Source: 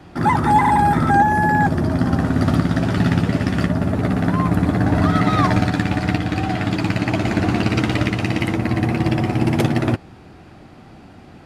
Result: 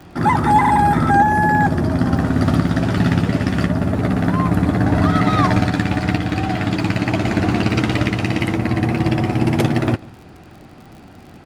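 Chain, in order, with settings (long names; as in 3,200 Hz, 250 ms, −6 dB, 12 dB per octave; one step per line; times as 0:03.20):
surface crackle 55 per second −35 dBFS
single-tap delay 144 ms −23.5 dB
level +1 dB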